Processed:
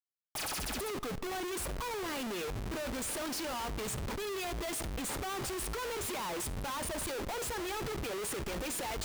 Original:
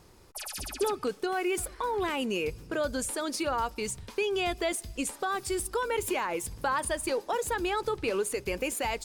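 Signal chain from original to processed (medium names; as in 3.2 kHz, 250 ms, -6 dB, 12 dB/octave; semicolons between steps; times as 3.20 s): Schmitt trigger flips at -46 dBFS; on a send: reverberation RT60 0.80 s, pre-delay 10 ms, DRR 18 dB; on the sum: trim -5.5 dB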